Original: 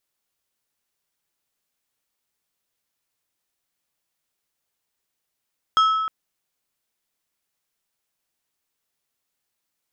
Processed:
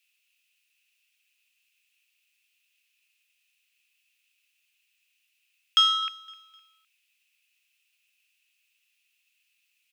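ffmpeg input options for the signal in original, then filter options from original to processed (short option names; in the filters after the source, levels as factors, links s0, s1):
-f lavfi -i "aevalsrc='0.237*pow(10,-3*t/1.63)*sin(2*PI*1300*t)+0.0794*pow(10,-3*t/0.858)*sin(2*PI*3250*t)+0.0266*pow(10,-3*t/0.618)*sin(2*PI*5200*t)+0.00891*pow(10,-3*t/0.528)*sin(2*PI*6500*t)+0.00299*pow(10,-3*t/0.44)*sin(2*PI*8450*t)':d=0.31:s=44100"
-filter_complex "[0:a]asplit=2[s0][s1];[s1]asoftclip=type=hard:threshold=0.0501,volume=0.316[s2];[s0][s2]amix=inputs=2:normalize=0,highpass=f=2600:t=q:w=9.9,aecho=1:1:256|512|768:0.0841|0.0303|0.0109"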